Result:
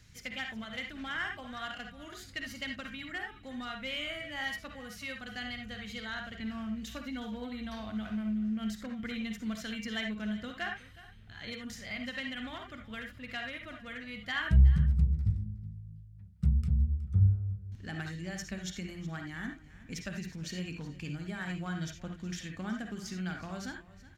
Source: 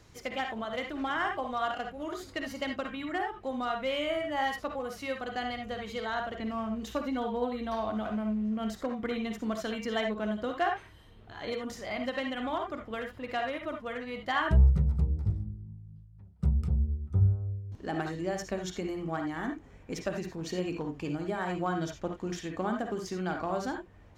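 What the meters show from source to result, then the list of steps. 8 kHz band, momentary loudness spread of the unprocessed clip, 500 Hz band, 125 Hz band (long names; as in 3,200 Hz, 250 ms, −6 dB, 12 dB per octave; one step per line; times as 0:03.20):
can't be measured, 9 LU, −13.5 dB, 0.0 dB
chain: flat-topped bell 590 Hz −13.5 dB 2.3 octaves
on a send: single-tap delay 368 ms −18 dB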